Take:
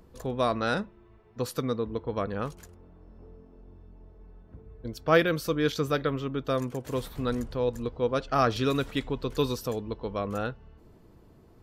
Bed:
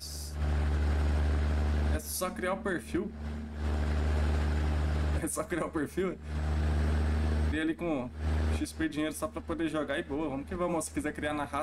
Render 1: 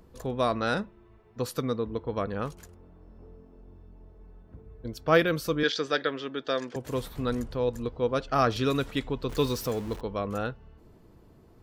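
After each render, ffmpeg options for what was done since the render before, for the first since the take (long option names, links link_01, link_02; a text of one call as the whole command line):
ffmpeg -i in.wav -filter_complex "[0:a]asettb=1/sr,asplit=3[link_01][link_02][link_03];[link_01]atrim=end=5.634[link_04];[link_02]atrim=start=5.63:end=6.76,asetpts=PTS-STARTPTS,afade=type=in:duration=0.004:curve=qsin,afade=type=out:start_time=1.126:duration=0.004:curve=qsin,highpass=310,equalizer=frequency=1100:width_type=q:width=4:gain=-4,equalizer=frequency=1700:width_type=q:width=4:gain=9,equalizer=frequency=3400:width_type=q:width=4:gain=6,equalizer=frequency=4900:width_type=q:width=4:gain=7,lowpass=frequency=6900:width=0.5412,lowpass=frequency=6900:width=1.3066[link_05];[link_03]atrim=start=6.756[link_06];[link_04][link_05]acrossfade=duration=0.004:curve1=hsin:curve2=qsin[link_07];[link_07][link_06]acrossfade=duration=0.004:curve1=qsin:curve2=hsin,asettb=1/sr,asplit=3[link_08][link_09][link_10];[link_08]atrim=end=9.294[link_11];[link_09]atrim=start=9.29:end=10.01,asetpts=PTS-STARTPTS,afade=type=in:duration=0.004:curve=qsin,afade=type=out:start_time=0.716:duration=0.004:curve=qsin,aeval=exprs='val(0)+0.5*0.0126*sgn(val(0))':channel_layout=same[link_12];[link_10]atrim=start=10.006[link_13];[link_11][link_12]acrossfade=duration=0.004:curve1=hsin:curve2=qsin[link_14];[link_14][link_13]acrossfade=duration=0.004:curve1=qsin:curve2=hsin" out.wav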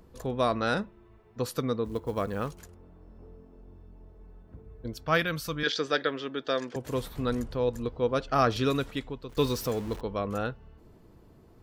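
ffmpeg -i in.wav -filter_complex "[0:a]asplit=3[link_01][link_02][link_03];[link_01]afade=type=out:start_time=1.84:duration=0.02[link_04];[link_02]acrusher=bits=7:mode=log:mix=0:aa=0.000001,afade=type=in:start_time=1.84:duration=0.02,afade=type=out:start_time=2.59:duration=0.02[link_05];[link_03]afade=type=in:start_time=2.59:duration=0.02[link_06];[link_04][link_05][link_06]amix=inputs=3:normalize=0,asettb=1/sr,asplit=3[link_07][link_08][link_09];[link_07]atrim=end=5.054[link_10];[link_08]atrim=start=5.05:end=5.67,asetpts=PTS-STARTPTS,afade=type=in:duration=0.004:curve=qsin,afade=type=out:start_time=0.616:duration=0.004:curve=qsin,equalizer=frequency=400:width=1:gain=-10[link_11];[link_09]atrim=start=5.666[link_12];[link_10][link_11]acrossfade=duration=0.004:curve1=hsin:curve2=qsin[link_13];[link_13][link_12]acrossfade=duration=0.004:curve1=qsin:curve2=hsin,asplit=2[link_14][link_15];[link_14]atrim=end=9.37,asetpts=PTS-STARTPTS,afade=type=out:start_time=8.67:duration=0.7:silence=0.199526[link_16];[link_15]atrim=start=9.37,asetpts=PTS-STARTPTS,afade=type=in:duration=0.004:curve=hsin:silence=0.199526[link_17];[link_16][link_17]concat=n=2:v=0:a=1" out.wav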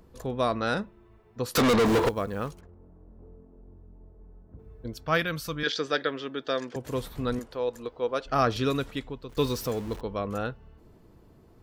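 ffmpeg -i in.wav -filter_complex "[0:a]asettb=1/sr,asplit=3[link_01][link_02][link_03];[link_01]atrim=end=1.554[link_04];[link_02]atrim=start=1.55:end=2.09,asetpts=PTS-STARTPTS,afade=type=in:duration=0.004:curve=qsin,afade=type=out:start_time=0.536:duration=0.004:curve=qsin,asplit=2[link_05][link_06];[link_06]highpass=frequency=720:poles=1,volume=41dB,asoftclip=type=tanh:threshold=-14.5dB[link_07];[link_05][link_07]amix=inputs=2:normalize=0,lowpass=frequency=5700:poles=1,volume=-6dB[link_08];[link_03]atrim=start=2.086[link_09];[link_04][link_08]acrossfade=duration=0.004:curve1=hsin:curve2=qsin[link_10];[link_10][link_09]acrossfade=duration=0.004:curve1=qsin:curve2=hsin,asplit=3[link_11][link_12][link_13];[link_11]afade=type=out:start_time=2.59:duration=0.02[link_14];[link_12]adynamicsmooth=sensitivity=3.5:basefreq=1200,afade=type=in:start_time=2.59:duration=0.02,afade=type=out:start_time=4.58:duration=0.02[link_15];[link_13]afade=type=in:start_time=4.58:duration=0.02[link_16];[link_14][link_15][link_16]amix=inputs=3:normalize=0,asettb=1/sr,asplit=3[link_17][link_18][link_19];[link_17]atrim=end=7.394[link_20];[link_18]atrim=start=7.39:end=8.26,asetpts=PTS-STARTPTS,afade=type=in:duration=0.004:curve=qsin,afade=type=out:start_time=0.866:duration=0.004:curve=qsin,bass=frequency=250:gain=-15,treble=frequency=4000:gain=-1[link_21];[link_19]atrim=start=8.256[link_22];[link_20][link_21]acrossfade=duration=0.004:curve1=hsin:curve2=qsin[link_23];[link_23][link_22]acrossfade=duration=0.004:curve1=qsin:curve2=hsin" out.wav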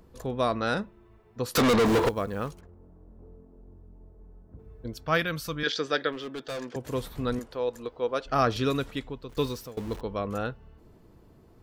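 ffmpeg -i in.wav -filter_complex "[0:a]asettb=1/sr,asplit=3[link_01][link_02][link_03];[link_01]atrim=end=6.124[link_04];[link_02]atrim=start=6.12:end=6.73,asetpts=PTS-STARTPTS,afade=type=in:duration=0.004:curve=qsin,afade=type=out:start_time=0.606:duration=0.004:curve=qsin,asoftclip=type=hard:threshold=-31.5dB[link_05];[link_03]atrim=start=6.726[link_06];[link_04][link_05]acrossfade=duration=0.004:curve1=hsin:curve2=qsin[link_07];[link_07][link_06]acrossfade=duration=0.004:curve1=qsin:curve2=hsin,asplit=2[link_08][link_09];[link_08]atrim=end=9.77,asetpts=PTS-STARTPTS,afade=type=out:start_time=9.32:duration=0.45:silence=0.0891251[link_10];[link_09]atrim=start=9.77,asetpts=PTS-STARTPTS,afade=type=in:duration=0.004:curve=hsin:silence=0.0891251[link_11];[link_10][link_11]concat=n=2:v=0:a=1" out.wav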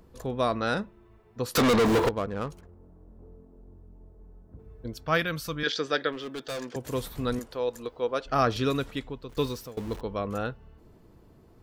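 ffmpeg -i in.wav -filter_complex "[0:a]asplit=3[link_01][link_02][link_03];[link_01]afade=type=out:start_time=2.06:duration=0.02[link_04];[link_02]adynamicsmooth=sensitivity=7.5:basefreq=1300,afade=type=in:start_time=2.06:duration=0.02,afade=type=out:start_time=2.5:duration=0.02[link_05];[link_03]afade=type=in:start_time=2.5:duration=0.02[link_06];[link_04][link_05][link_06]amix=inputs=3:normalize=0,asettb=1/sr,asplit=3[link_07][link_08][link_09];[link_07]atrim=end=6.264[link_10];[link_08]atrim=start=6.26:end=8.05,asetpts=PTS-STARTPTS,afade=type=in:duration=0.004:curve=qsin,afade=type=out:start_time=1.786:duration=0.004:curve=qsin,highshelf=frequency=4900:gain=6[link_11];[link_09]atrim=start=8.046[link_12];[link_10][link_11]acrossfade=duration=0.004:curve1=hsin:curve2=qsin[link_13];[link_13][link_12]acrossfade=duration=0.004:curve1=qsin:curve2=hsin" out.wav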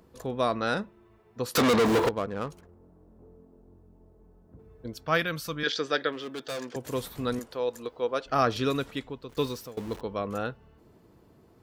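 ffmpeg -i in.wav -af "highpass=frequency=120:poles=1" out.wav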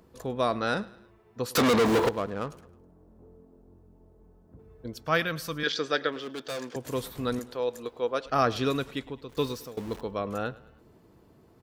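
ffmpeg -i in.wav -af "aecho=1:1:106|212|318:0.0944|0.0425|0.0191" out.wav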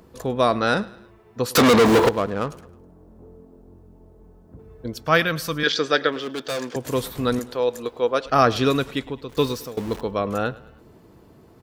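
ffmpeg -i in.wav -af "volume=7.5dB" out.wav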